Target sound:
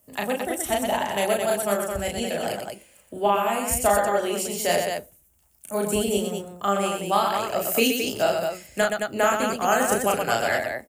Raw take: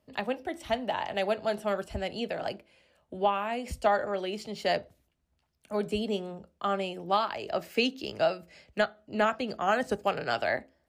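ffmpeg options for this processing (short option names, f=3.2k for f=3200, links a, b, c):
-filter_complex "[0:a]aexciter=amount=12.2:drive=3:freq=6.6k,asettb=1/sr,asplit=3[a][b][c];[a]atrim=end=1.504[d];[b]atrim=start=1.5:end=1.99,asetpts=PTS-STARTPTS,afade=t=in:d=0.004:c=qsin,afade=t=out:st=0.486:d=0.004:c=qsin,agate=range=-33dB:threshold=-29dB:ratio=3:detection=peak[e];[c]atrim=start=1.986[f];[d][e]acrossfade=d=0.004:c1=hsin:c2=qsin[g];[g][f]acrossfade=d=0.004:c1=qsin:c2=hsin,aecho=1:1:34.99|122.4|218.7:0.794|0.562|0.562,volume=3dB"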